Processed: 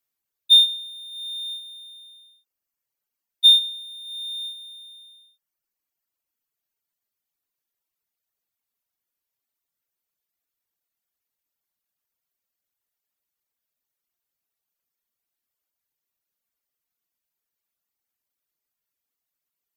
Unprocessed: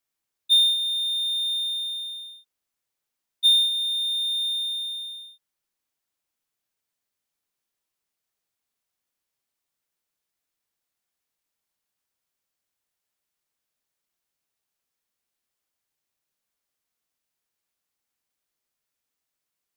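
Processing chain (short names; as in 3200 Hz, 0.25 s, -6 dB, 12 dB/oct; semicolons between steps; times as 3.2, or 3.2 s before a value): bell 14000 Hz +12 dB 0.21 oct; reverb removal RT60 1.6 s; dynamic EQ 3300 Hz, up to +7 dB, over -34 dBFS, Q 1.6; gain -1 dB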